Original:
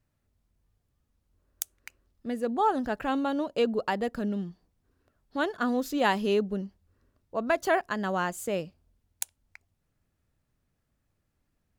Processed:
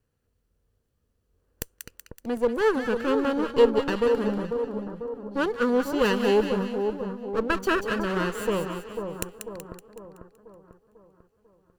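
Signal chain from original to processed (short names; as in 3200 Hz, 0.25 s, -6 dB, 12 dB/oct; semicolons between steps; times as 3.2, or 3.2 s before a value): minimum comb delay 0.69 ms; bell 480 Hz +13.5 dB 0.56 oct; split-band echo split 1200 Hz, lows 0.495 s, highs 0.188 s, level -6 dB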